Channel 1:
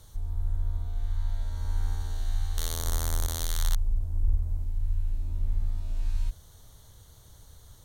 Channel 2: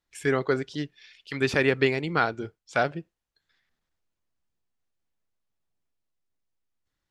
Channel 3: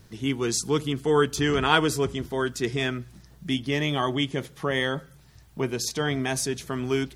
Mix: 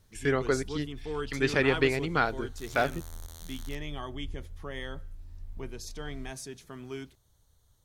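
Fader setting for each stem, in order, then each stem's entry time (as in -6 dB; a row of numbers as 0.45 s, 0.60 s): -15.0 dB, -2.5 dB, -14.0 dB; 0.00 s, 0.00 s, 0.00 s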